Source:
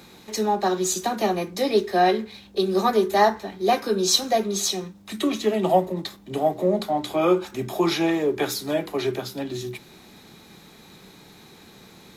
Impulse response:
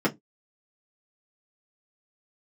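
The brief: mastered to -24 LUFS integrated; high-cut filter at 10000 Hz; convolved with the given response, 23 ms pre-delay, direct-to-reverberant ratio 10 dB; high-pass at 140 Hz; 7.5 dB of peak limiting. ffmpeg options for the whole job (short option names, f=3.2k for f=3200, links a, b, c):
-filter_complex "[0:a]highpass=140,lowpass=10k,alimiter=limit=-13dB:level=0:latency=1,asplit=2[a][b];[1:a]atrim=start_sample=2205,adelay=23[c];[b][c]afir=irnorm=-1:irlink=0,volume=-23dB[d];[a][d]amix=inputs=2:normalize=0"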